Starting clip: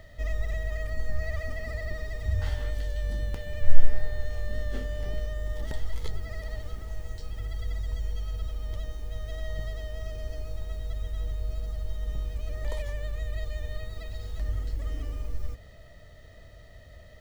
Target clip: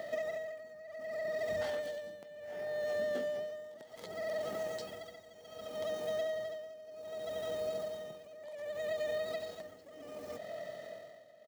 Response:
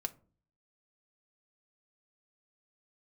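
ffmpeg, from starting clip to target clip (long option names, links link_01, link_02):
-af "highpass=frequency=180:width=0.5412,highpass=frequency=180:width=1.3066,equalizer=frequency=640:width_type=o:width=0.56:gain=11,acompressor=threshold=-37dB:ratio=16,atempo=1.5,tremolo=f=0.66:d=0.86,volume=6dB"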